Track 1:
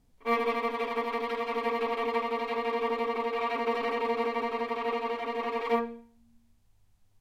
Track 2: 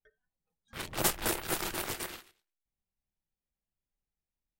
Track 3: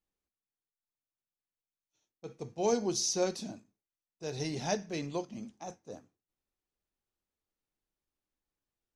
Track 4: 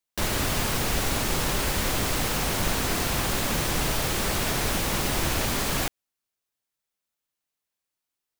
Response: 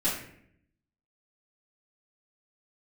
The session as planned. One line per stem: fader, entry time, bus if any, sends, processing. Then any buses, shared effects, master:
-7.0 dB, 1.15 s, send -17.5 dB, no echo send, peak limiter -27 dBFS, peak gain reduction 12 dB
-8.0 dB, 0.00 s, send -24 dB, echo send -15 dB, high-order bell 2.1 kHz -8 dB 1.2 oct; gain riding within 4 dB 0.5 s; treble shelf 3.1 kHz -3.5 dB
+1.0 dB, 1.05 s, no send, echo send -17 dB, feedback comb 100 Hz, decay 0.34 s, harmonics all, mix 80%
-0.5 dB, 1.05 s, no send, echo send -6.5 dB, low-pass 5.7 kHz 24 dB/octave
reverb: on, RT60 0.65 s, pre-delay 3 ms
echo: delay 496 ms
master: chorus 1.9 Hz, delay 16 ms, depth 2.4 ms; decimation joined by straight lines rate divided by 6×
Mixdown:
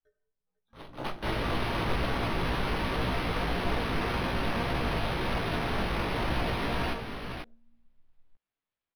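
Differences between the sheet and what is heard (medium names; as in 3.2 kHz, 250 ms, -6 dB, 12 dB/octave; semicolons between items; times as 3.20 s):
stem 2 -8.0 dB -> 0.0 dB; reverb return +9.5 dB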